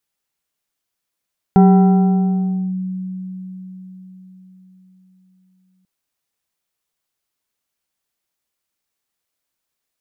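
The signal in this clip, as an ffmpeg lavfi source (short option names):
-f lavfi -i "aevalsrc='0.562*pow(10,-3*t/4.8)*sin(2*PI*186*t+0.68*clip(1-t/1.18,0,1)*sin(2*PI*3.13*186*t))':d=4.29:s=44100"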